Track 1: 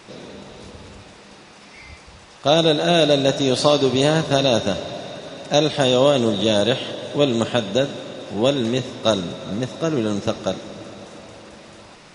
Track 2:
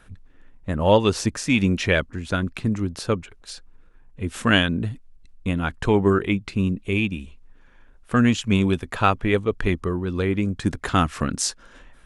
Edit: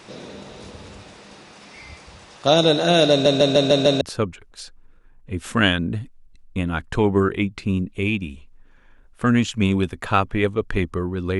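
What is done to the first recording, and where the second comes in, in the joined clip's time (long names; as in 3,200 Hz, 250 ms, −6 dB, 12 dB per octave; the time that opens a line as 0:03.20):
track 1
0:03.11: stutter in place 0.15 s, 6 plays
0:04.01: continue with track 2 from 0:02.91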